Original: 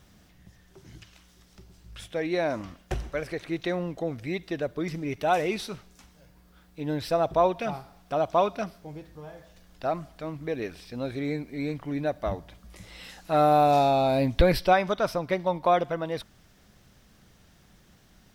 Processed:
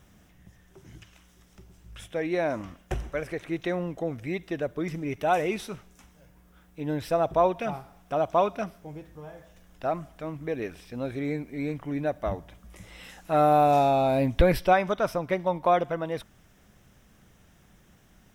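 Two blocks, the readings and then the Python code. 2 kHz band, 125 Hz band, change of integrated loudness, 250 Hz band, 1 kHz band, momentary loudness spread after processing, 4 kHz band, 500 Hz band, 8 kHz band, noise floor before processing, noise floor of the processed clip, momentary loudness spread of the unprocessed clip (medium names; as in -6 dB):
-0.5 dB, 0.0 dB, 0.0 dB, 0.0 dB, 0.0 dB, 16 LU, -4.5 dB, 0.0 dB, no reading, -59 dBFS, -59 dBFS, 17 LU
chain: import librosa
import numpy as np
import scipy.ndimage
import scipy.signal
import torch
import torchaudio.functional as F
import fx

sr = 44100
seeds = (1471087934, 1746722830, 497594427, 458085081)

y = fx.peak_eq(x, sr, hz=4400.0, db=-10.0, octaves=0.44)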